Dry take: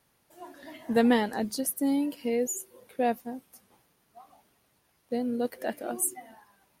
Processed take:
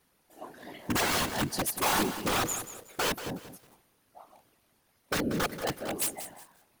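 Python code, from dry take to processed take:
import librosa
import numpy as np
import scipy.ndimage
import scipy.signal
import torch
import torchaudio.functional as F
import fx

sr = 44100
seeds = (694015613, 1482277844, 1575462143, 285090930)

y = (np.mod(10.0 ** (22.5 / 20.0) * x + 1.0, 2.0) - 1.0) / 10.0 ** (22.5 / 20.0)
y = fx.whisperise(y, sr, seeds[0])
y = fx.echo_crushed(y, sr, ms=184, feedback_pct=35, bits=8, wet_db=-11.0)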